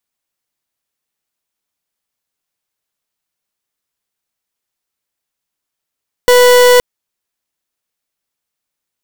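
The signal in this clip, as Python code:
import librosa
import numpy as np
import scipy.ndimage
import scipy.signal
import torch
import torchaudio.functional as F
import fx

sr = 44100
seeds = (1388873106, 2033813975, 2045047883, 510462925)

y = fx.pulse(sr, length_s=0.52, hz=493.0, level_db=-6.5, duty_pct=39)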